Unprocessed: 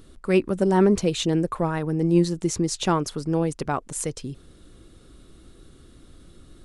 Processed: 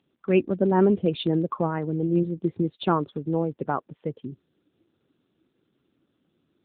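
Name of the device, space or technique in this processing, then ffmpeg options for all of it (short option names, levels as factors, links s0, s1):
mobile call with aggressive noise cancelling: -af "highpass=130,afftdn=nr=16:nf=-33" -ar 8000 -c:a libopencore_amrnb -b:a 7950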